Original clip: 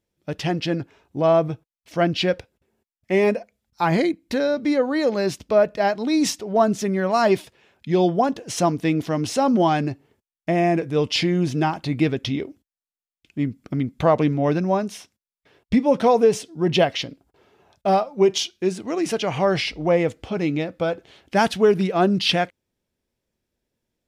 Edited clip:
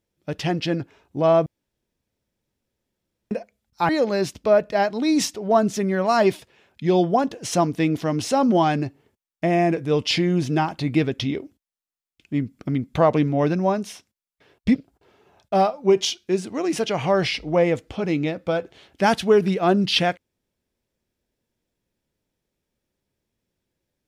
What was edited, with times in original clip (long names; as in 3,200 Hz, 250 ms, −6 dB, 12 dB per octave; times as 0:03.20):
0:01.46–0:03.31: fill with room tone
0:03.89–0:04.94: remove
0:15.80–0:17.08: remove